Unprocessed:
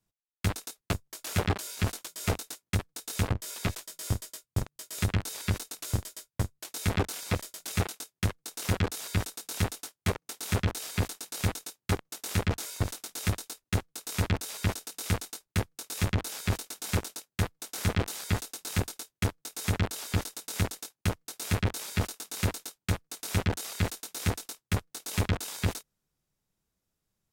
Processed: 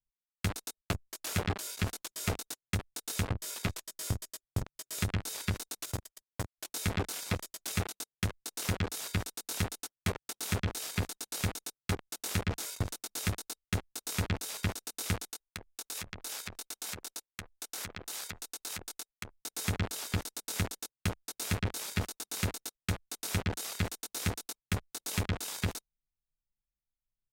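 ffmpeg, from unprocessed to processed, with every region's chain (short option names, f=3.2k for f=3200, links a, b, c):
-filter_complex "[0:a]asettb=1/sr,asplit=3[a][b][c];[a]atrim=end=5.854[d];[b]atrim=start=5.85:end=6.59,asetpts=PTS-STARTPTS,afade=t=in:d=0.004:c=qsin,afade=t=out:st=0.736:d=0.004:c=qsin,lowshelf=f=250:g=-8.5,aeval=exprs='sgn(val(0))*max(abs(val(0))-0.00422,0)':c=same[e];[c]atrim=start=6.586[f];[d][e]acrossfade=d=0.004:c1=hsin:c2=qsin[g];[g][f]acrossfade=d=0.004:c1=qsin:c2=hsin,asettb=1/sr,asplit=3[h][i][j];[h]atrim=end=15.304[k];[i]atrim=start=15.3:end=19.36,asetpts=PTS-STARTPTS,afade=t=in:d=0.004:c=qsin,afade=t=out:st=4.056:d=0.004:c=qsin,acompressor=threshold=-34dB:ratio=10:attack=3.2:release=140:knee=1:detection=peak,equalizer=f=100:w=0.37:g=-8.5[l];[j]atrim=start=19.356[m];[k][l]acrossfade=d=0.004:c1=hsin:c2=qsin[n];[n][m]acrossfade=d=0.004:c1=qsin:c2=hsin,anlmdn=0.251,acompressor=threshold=-27dB:ratio=6"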